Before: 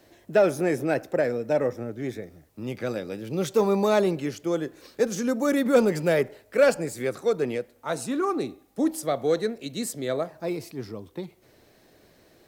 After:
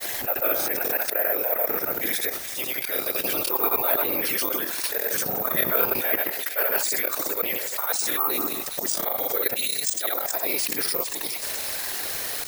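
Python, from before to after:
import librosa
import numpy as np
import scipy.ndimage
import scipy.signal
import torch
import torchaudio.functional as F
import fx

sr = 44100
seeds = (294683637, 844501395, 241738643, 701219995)

p1 = fx.env_lowpass_down(x, sr, base_hz=2900.0, full_db=-20.0)
p2 = scipy.signal.sosfilt(scipy.signal.butter(2, 810.0, 'highpass', fs=sr, output='sos'), p1)
p3 = fx.high_shelf(p2, sr, hz=2200.0, db=6.5)
p4 = fx.level_steps(p3, sr, step_db=16)
p5 = fx.auto_swell(p4, sr, attack_ms=166.0)
p6 = fx.whisperise(p5, sr, seeds[0])
p7 = fx.granulator(p6, sr, seeds[1], grain_ms=100.0, per_s=20.0, spray_ms=100.0, spread_st=0)
p8 = p7 + fx.echo_wet_highpass(p7, sr, ms=417, feedback_pct=55, hz=5200.0, wet_db=-14.0, dry=0)
p9 = (np.kron(p8[::3], np.eye(3)[0]) * 3)[:len(p8)]
p10 = fx.env_flatten(p9, sr, amount_pct=70)
y = p10 * librosa.db_to_amplitude(7.0)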